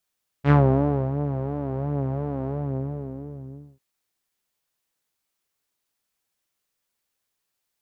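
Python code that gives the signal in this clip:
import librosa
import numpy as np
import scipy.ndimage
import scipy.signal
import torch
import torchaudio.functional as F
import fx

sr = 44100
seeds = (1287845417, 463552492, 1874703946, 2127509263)

y = fx.sub_patch_vibrato(sr, seeds[0], note=49, wave='saw', wave2='saw', interval_st=0, detune_cents=16, level2_db=-9.0, sub_db=-18.5, noise_db=-30.0, kind='lowpass', cutoff_hz=320.0, q=1.2, env_oct=3.0, env_decay_s=0.18, env_sustain_pct=35, attack_ms=66.0, decay_s=0.6, sustain_db=-12, release_s=1.32, note_s=2.03, lfo_hz=2.9, vibrato_cents=87)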